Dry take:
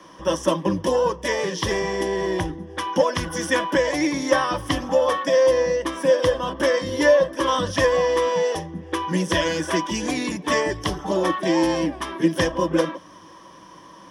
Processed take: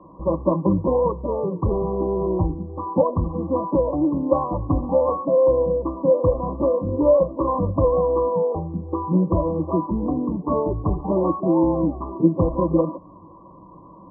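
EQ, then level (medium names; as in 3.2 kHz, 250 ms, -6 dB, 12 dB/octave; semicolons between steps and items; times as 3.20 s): brick-wall FIR low-pass 1.2 kHz; distance through air 360 m; bass shelf 190 Hz +10.5 dB; 0.0 dB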